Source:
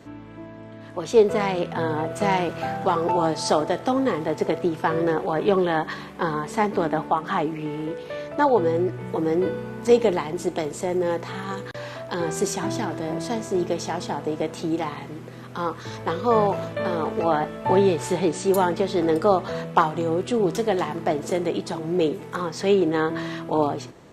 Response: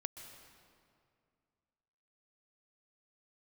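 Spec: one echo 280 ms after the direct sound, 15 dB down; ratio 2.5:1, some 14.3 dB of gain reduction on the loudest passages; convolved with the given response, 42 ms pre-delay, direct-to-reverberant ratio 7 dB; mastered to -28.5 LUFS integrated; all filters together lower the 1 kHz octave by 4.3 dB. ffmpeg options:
-filter_complex "[0:a]equalizer=f=1000:t=o:g=-5.5,acompressor=threshold=0.02:ratio=2.5,aecho=1:1:280:0.178,asplit=2[s0][s1];[1:a]atrim=start_sample=2205,adelay=42[s2];[s1][s2]afir=irnorm=-1:irlink=0,volume=0.562[s3];[s0][s3]amix=inputs=2:normalize=0,volume=1.78"

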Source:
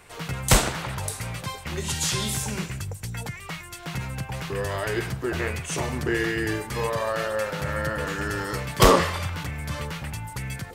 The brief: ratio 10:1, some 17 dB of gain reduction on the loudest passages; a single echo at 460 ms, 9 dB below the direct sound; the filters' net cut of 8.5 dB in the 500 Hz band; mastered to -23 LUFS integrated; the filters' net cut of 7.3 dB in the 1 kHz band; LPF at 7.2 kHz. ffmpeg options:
-af "lowpass=7200,equalizer=f=500:t=o:g=-9,equalizer=f=1000:t=o:g=-7,acompressor=threshold=0.0282:ratio=10,aecho=1:1:460:0.355,volume=3.98"

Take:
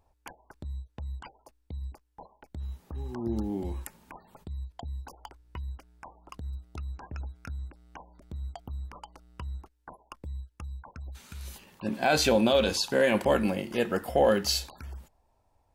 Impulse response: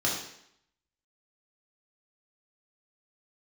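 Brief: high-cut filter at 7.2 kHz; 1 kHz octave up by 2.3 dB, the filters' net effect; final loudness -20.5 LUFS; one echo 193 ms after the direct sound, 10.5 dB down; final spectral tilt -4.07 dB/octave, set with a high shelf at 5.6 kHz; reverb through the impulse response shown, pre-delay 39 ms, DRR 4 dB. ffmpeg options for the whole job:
-filter_complex "[0:a]lowpass=7200,equalizer=f=1000:t=o:g=3.5,highshelf=f=5600:g=-5.5,aecho=1:1:193:0.299,asplit=2[s0][s1];[1:a]atrim=start_sample=2205,adelay=39[s2];[s1][s2]afir=irnorm=-1:irlink=0,volume=0.211[s3];[s0][s3]amix=inputs=2:normalize=0,volume=2"

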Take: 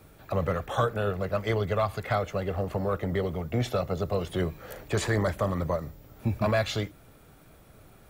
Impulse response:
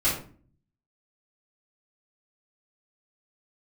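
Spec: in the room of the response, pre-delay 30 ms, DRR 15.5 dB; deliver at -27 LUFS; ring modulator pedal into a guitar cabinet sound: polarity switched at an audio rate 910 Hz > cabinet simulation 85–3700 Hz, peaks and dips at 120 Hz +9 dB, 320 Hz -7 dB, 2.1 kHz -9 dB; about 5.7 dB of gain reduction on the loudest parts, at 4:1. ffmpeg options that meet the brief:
-filter_complex "[0:a]acompressor=threshold=0.0398:ratio=4,asplit=2[s0][s1];[1:a]atrim=start_sample=2205,adelay=30[s2];[s1][s2]afir=irnorm=-1:irlink=0,volume=0.0422[s3];[s0][s3]amix=inputs=2:normalize=0,aeval=exprs='val(0)*sgn(sin(2*PI*910*n/s))':c=same,highpass=85,equalizer=f=120:t=q:w=4:g=9,equalizer=f=320:t=q:w=4:g=-7,equalizer=f=2100:t=q:w=4:g=-9,lowpass=f=3700:w=0.5412,lowpass=f=3700:w=1.3066,volume=2.24"

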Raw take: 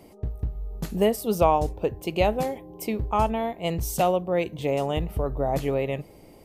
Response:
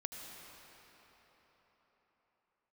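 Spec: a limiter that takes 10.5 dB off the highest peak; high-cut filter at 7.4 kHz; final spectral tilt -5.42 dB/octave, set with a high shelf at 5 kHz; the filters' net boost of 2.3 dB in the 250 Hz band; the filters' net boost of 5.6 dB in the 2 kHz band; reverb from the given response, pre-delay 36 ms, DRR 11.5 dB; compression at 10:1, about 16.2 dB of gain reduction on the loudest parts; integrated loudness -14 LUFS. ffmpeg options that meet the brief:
-filter_complex "[0:a]lowpass=7400,equalizer=f=250:t=o:g=3,equalizer=f=2000:t=o:g=6,highshelf=f=5000:g=5,acompressor=threshold=0.0282:ratio=10,alimiter=level_in=2:limit=0.0631:level=0:latency=1,volume=0.501,asplit=2[s0][s1];[1:a]atrim=start_sample=2205,adelay=36[s2];[s1][s2]afir=irnorm=-1:irlink=0,volume=0.299[s3];[s0][s3]amix=inputs=2:normalize=0,volume=18.8"

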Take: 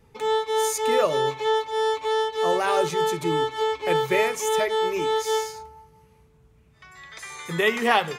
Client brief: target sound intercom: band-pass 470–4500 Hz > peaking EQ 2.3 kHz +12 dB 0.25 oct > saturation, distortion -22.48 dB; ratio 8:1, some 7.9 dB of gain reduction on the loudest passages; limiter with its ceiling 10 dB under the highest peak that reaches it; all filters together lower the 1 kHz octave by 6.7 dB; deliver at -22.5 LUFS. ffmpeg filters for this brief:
-af "equalizer=f=1000:t=o:g=-8,acompressor=threshold=0.0501:ratio=8,alimiter=level_in=1.33:limit=0.0631:level=0:latency=1,volume=0.75,highpass=470,lowpass=4500,equalizer=f=2300:t=o:w=0.25:g=12,asoftclip=threshold=0.0473,volume=5.01"

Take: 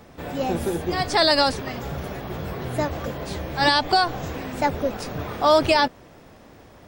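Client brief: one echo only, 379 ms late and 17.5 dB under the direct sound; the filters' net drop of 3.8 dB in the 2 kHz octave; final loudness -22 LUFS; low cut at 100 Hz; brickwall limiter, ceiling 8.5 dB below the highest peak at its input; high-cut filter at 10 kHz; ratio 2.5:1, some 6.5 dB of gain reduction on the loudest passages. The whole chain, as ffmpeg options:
-af "highpass=100,lowpass=10000,equalizer=f=2000:t=o:g=-5,acompressor=threshold=0.0631:ratio=2.5,alimiter=limit=0.0841:level=0:latency=1,aecho=1:1:379:0.133,volume=2.99"

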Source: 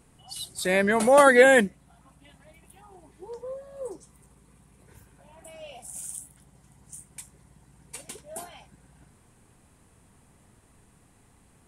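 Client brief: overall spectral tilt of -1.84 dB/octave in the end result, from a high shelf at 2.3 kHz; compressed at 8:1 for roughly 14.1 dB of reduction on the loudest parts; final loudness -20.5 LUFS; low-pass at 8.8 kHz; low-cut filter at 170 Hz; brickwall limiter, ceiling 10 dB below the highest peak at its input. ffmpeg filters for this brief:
-af "highpass=170,lowpass=8800,highshelf=f=2300:g=7,acompressor=threshold=0.0562:ratio=8,volume=7.5,alimiter=limit=0.376:level=0:latency=1"

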